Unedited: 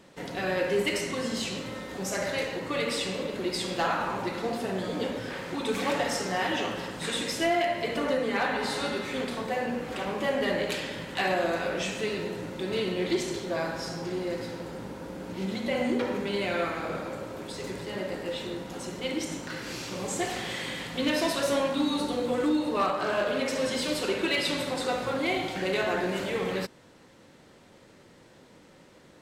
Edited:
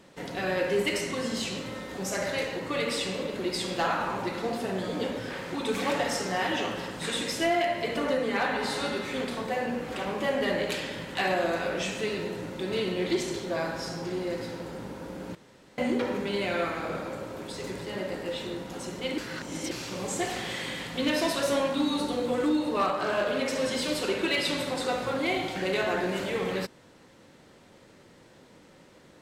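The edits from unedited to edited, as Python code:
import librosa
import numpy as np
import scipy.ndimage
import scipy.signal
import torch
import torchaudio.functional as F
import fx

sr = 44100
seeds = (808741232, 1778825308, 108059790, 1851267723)

y = fx.edit(x, sr, fx.room_tone_fill(start_s=15.35, length_s=0.43),
    fx.reverse_span(start_s=19.18, length_s=0.53), tone=tone)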